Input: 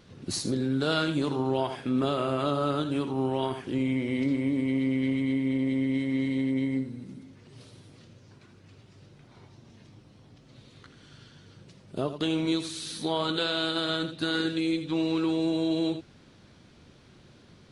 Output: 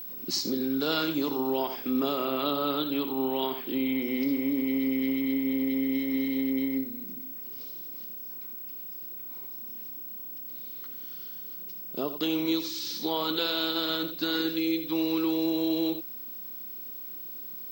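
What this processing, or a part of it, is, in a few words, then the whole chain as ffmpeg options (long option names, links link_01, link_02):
old television with a line whistle: -filter_complex "[0:a]asettb=1/sr,asplit=3[link_01][link_02][link_03];[link_01]atrim=end=2.254[link_04];[link_02]atrim=start=2.25:end=4.02,asetpts=PTS-STARTPTS,afade=type=in:duration=0.004:curve=qsin,afade=type=out:start_time=1.766:duration=0.004:curve=qsin,highshelf=frequency=4800:width_type=q:width=3:gain=-7[link_05];[link_03]atrim=start=4.016[link_06];[link_04][link_05]acrossfade=duration=0.004:curve1=hsin:curve2=qsin[link_07];[link_07][link_06]acrossfade=duration=0.004:curve1=qsin:curve2=hsin,highpass=frequency=200:width=0.5412,highpass=frequency=200:width=1.3066,equalizer=frequency=620:width_type=q:width=4:gain=-4,equalizer=frequency=1600:width_type=q:width=4:gain=-5,equalizer=frequency=5200:width_type=q:width=4:gain=9,lowpass=frequency=7000:width=0.5412,lowpass=frequency=7000:width=1.3066,aeval=exprs='val(0)+0.0141*sin(2*PI*15734*n/s)':channel_layout=same"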